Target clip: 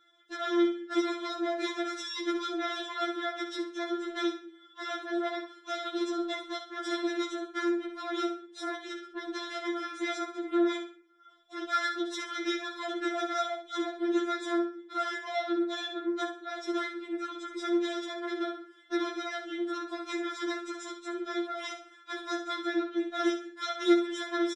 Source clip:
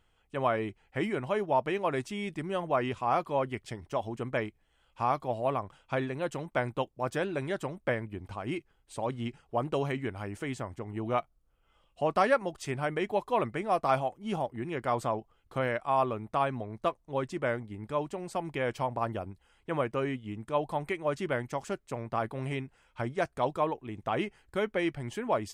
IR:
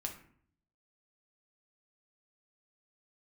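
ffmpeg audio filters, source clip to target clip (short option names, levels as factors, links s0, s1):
-filter_complex "[0:a]acrossover=split=310|2500[s0][s1][s2];[s1]acompressor=threshold=0.00794:ratio=6[s3];[s0][s3][s2]amix=inputs=3:normalize=0,aeval=exprs='0.0708*(cos(1*acos(clip(val(0)/0.0708,-1,1)))-cos(1*PI/2))+0.0158*(cos(8*acos(clip(val(0)/0.0708,-1,1)))-cos(8*PI/2))':c=same,asoftclip=type=tanh:threshold=0.0562,highpass=170,equalizer=f=1400:t=q:w=4:g=9,equalizer=f=2500:t=q:w=4:g=-5,equalizer=f=3600:t=q:w=4:g=8,lowpass=f=6600:w=0.5412,lowpass=f=6600:w=1.3066,bandreject=f=4300:w=23,aecho=1:1:6.6:0.65,aecho=1:1:66|132|198:0.376|0.109|0.0316,asplit=2[s4][s5];[1:a]atrim=start_sample=2205[s6];[s5][s6]afir=irnorm=-1:irlink=0,volume=1.06[s7];[s4][s7]amix=inputs=2:normalize=0,asetrate=45864,aresample=44100,afftfilt=real='re*4*eq(mod(b,16),0)':imag='im*4*eq(mod(b,16),0)':win_size=2048:overlap=0.75"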